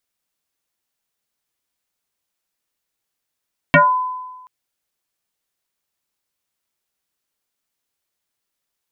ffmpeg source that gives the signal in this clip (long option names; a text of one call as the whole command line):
ffmpeg -f lavfi -i "aevalsrc='0.531*pow(10,-3*t/1.23)*sin(2*PI*1010*t+4.3*pow(10,-3*t/0.26)*sin(2*PI*0.42*1010*t))':duration=0.73:sample_rate=44100" out.wav